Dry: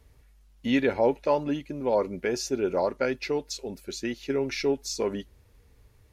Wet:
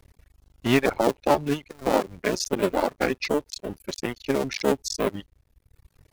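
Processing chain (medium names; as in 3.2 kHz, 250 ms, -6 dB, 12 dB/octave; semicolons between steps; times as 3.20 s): cycle switcher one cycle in 2, muted; reverb removal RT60 1.1 s; trim +6 dB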